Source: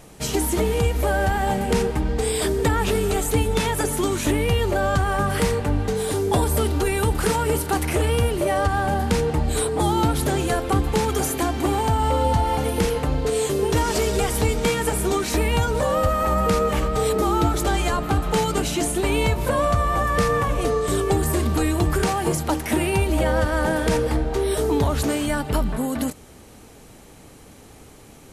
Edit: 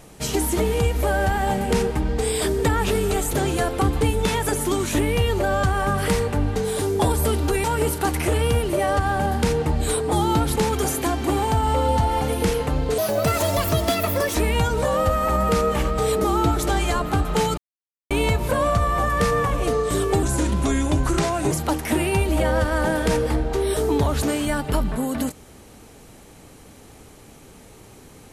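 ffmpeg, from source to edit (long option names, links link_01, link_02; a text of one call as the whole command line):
ffmpeg -i in.wav -filter_complex "[0:a]asplit=11[link_01][link_02][link_03][link_04][link_05][link_06][link_07][link_08][link_09][link_10][link_11];[link_01]atrim=end=3.332[link_12];[link_02]atrim=start=10.238:end=10.922[link_13];[link_03]atrim=start=3.328:end=6.962[link_14];[link_04]atrim=start=7.318:end=10.242[link_15];[link_05]atrim=start=10.918:end=13.344[link_16];[link_06]atrim=start=13.34:end=15.32,asetpts=PTS-STARTPTS,asetrate=63945,aresample=44100,atrim=end_sample=60219,asetpts=PTS-STARTPTS[link_17];[link_07]atrim=start=15.316:end=18.55,asetpts=PTS-STARTPTS,afade=type=out:start_time=3.23:duration=0.004:curve=hsin[link_18];[link_08]atrim=start=18.55:end=19.08,asetpts=PTS-STARTPTS,volume=0[link_19];[link_09]atrim=start=19.08:end=21.204,asetpts=PTS-STARTPTS,afade=type=in:duration=0.004:curve=hsin[link_20];[link_10]atrim=start=21.2:end=22.32,asetpts=PTS-STARTPTS,asetrate=38367,aresample=44100,atrim=end_sample=56772,asetpts=PTS-STARTPTS[link_21];[link_11]atrim=start=22.316[link_22];[link_12][link_13]acrossfade=duration=0.004:curve1=hsin:curve2=hsin[link_23];[link_23][link_14]acrossfade=duration=0.004:curve1=hsin:curve2=hsin[link_24];[link_24][link_15]acrossfade=duration=0.004:curve1=hsin:curve2=hsin[link_25];[link_25][link_16]acrossfade=duration=0.004:curve1=hsin:curve2=hsin[link_26];[link_26][link_17]acrossfade=duration=0.004:curve1=hsin:curve2=hsin[link_27];[link_18][link_19][link_20]concat=n=3:v=0:a=1[link_28];[link_27][link_28]acrossfade=duration=0.004:curve1=hsin:curve2=hsin[link_29];[link_29][link_21]acrossfade=duration=0.004:curve1=hsin:curve2=hsin[link_30];[link_30][link_22]acrossfade=duration=0.004:curve1=hsin:curve2=hsin" out.wav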